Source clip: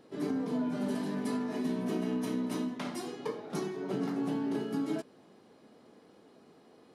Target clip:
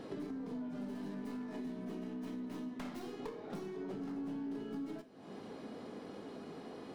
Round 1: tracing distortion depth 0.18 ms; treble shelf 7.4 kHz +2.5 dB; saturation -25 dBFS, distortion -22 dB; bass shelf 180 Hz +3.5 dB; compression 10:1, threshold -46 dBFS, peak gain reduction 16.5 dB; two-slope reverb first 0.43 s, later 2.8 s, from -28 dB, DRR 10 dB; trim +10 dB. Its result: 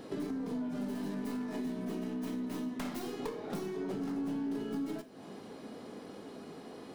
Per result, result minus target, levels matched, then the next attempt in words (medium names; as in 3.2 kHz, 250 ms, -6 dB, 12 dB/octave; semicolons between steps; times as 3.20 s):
compression: peak gain reduction -5.5 dB; 8 kHz band +4.5 dB
tracing distortion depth 0.18 ms; treble shelf 7.4 kHz +2.5 dB; saturation -25 dBFS, distortion -22 dB; bass shelf 180 Hz +3.5 dB; compression 10:1, threshold -52 dBFS, peak gain reduction 22 dB; two-slope reverb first 0.43 s, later 2.8 s, from -28 dB, DRR 10 dB; trim +10 dB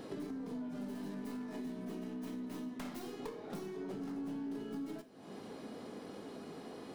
8 kHz band +5.0 dB
tracing distortion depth 0.18 ms; treble shelf 7.4 kHz -8 dB; saturation -25 dBFS, distortion -22 dB; bass shelf 180 Hz +3.5 dB; compression 10:1, threshold -52 dBFS, peak gain reduction 22 dB; two-slope reverb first 0.43 s, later 2.8 s, from -28 dB, DRR 10 dB; trim +10 dB